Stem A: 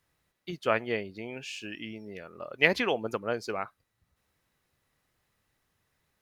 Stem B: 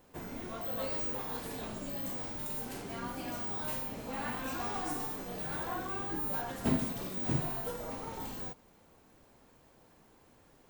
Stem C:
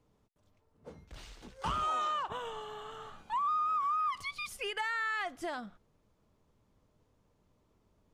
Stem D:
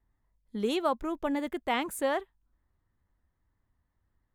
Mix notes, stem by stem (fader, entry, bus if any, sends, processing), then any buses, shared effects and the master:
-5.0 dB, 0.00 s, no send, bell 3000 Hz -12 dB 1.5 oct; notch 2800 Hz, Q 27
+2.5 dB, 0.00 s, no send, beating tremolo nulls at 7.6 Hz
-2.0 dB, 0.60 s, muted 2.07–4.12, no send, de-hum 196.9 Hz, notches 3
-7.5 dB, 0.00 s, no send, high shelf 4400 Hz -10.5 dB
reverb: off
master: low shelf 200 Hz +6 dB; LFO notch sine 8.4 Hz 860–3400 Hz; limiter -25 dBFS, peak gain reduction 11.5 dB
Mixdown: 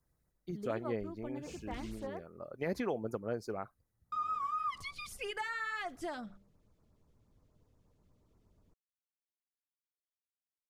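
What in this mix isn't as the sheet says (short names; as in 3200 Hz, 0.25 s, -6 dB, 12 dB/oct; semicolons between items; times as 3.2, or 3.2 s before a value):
stem B: muted; stem D -7.5 dB -> -14.5 dB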